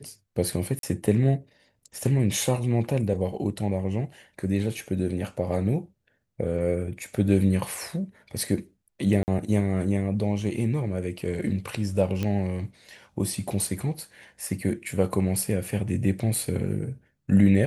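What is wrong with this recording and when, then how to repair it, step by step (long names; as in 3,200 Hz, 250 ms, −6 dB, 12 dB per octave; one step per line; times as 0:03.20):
0:00.79–0:00.83: drop-out 42 ms
0:09.23–0:09.28: drop-out 49 ms
0:12.23: click −15 dBFS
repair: click removal
repair the gap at 0:00.79, 42 ms
repair the gap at 0:09.23, 49 ms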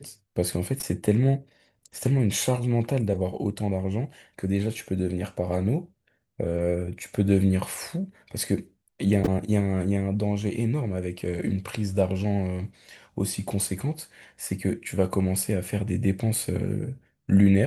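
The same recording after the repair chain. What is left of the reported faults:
none of them is left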